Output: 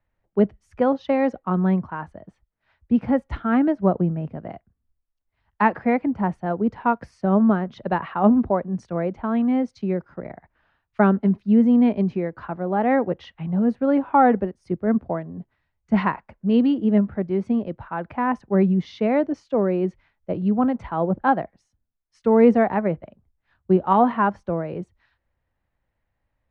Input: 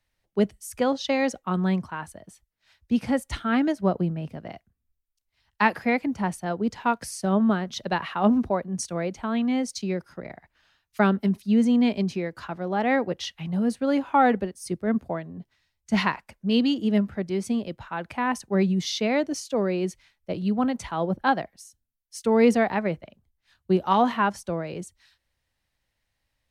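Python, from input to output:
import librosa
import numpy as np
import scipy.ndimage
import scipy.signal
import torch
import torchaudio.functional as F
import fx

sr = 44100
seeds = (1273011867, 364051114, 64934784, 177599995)

y = scipy.signal.sosfilt(scipy.signal.butter(2, 1400.0, 'lowpass', fs=sr, output='sos'), x)
y = y * librosa.db_to_amplitude(4.0)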